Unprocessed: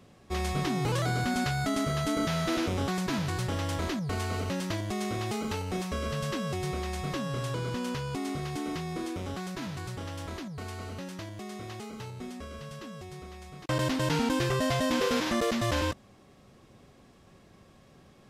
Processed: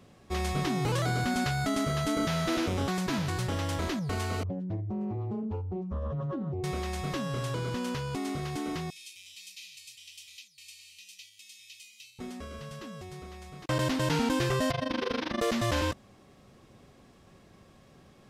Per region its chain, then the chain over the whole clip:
4.43–6.64 s: spectral contrast enhancement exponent 2.6 + hum notches 60/120/180/240/300/360/420/480 Hz + loudspeaker Doppler distortion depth 0.3 ms
8.90–12.19 s: elliptic high-pass 2.4 kHz + comb 1.6 ms, depth 44%
14.71–15.41 s: Savitzky-Golay filter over 15 samples + AM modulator 25 Hz, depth 90% + hum notches 60/120/180/240/300/360/420/480/540/600 Hz
whole clip: none

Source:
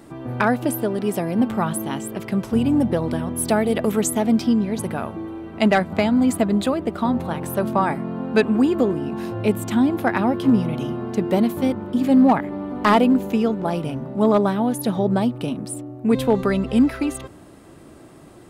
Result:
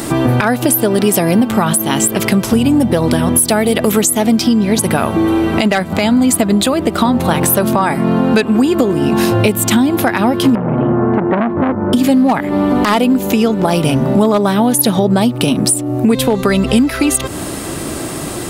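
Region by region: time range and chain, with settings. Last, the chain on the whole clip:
10.55–11.93 s: low-pass 1.6 kHz 24 dB/octave + transformer saturation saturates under 820 Hz
whole clip: treble shelf 2.9 kHz +11.5 dB; compression 12:1, threshold -30 dBFS; loudness maximiser +22.5 dB; trim -1 dB

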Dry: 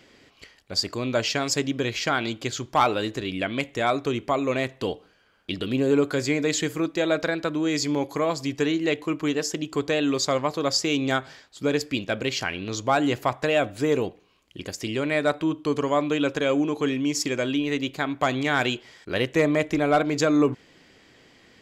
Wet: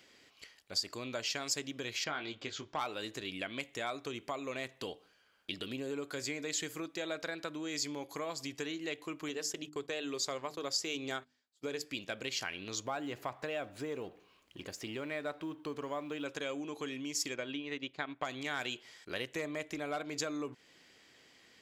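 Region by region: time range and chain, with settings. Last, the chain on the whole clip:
2.04–2.79 s: distance through air 150 m + doubling 20 ms -7 dB
9.29–11.85 s: gate -37 dBFS, range -25 dB + peaking EQ 410 Hz +5.5 dB 0.26 oct + hum notches 50/100/150/200/250/300 Hz
12.85–16.26 s: companding laws mixed up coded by mu + treble shelf 3.5 kHz -11.5 dB
17.34–18.25 s: low-pass 3.8 kHz + transient shaper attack +3 dB, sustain -7 dB
whole clip: compression 2.5:1, threshold -28 dBFS; tilt EQ +2 dB/octave; trim -8.5 dB

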